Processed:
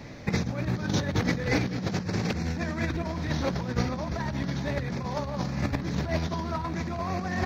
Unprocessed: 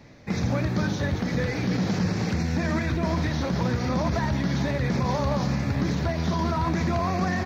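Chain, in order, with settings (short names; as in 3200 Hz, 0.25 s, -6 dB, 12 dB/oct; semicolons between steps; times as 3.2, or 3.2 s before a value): negative-ratio compressor -29 dBFS, ratio -0.5; gain +1.5 dB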